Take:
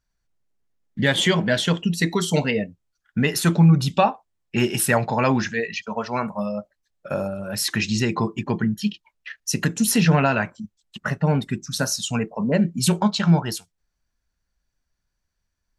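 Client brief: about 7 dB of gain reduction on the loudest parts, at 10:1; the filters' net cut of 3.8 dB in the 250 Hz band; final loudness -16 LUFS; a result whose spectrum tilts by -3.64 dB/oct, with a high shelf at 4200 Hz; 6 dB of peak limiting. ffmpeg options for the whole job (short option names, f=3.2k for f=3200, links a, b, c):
-af "equalizer=f=250:t=o:g=-6,highshelf=f=4.2k:g=9,acompressor=threshold=-19dB:ratio=10,volume=10dB,alimiter=limit=-4dB:level=0:latency=1"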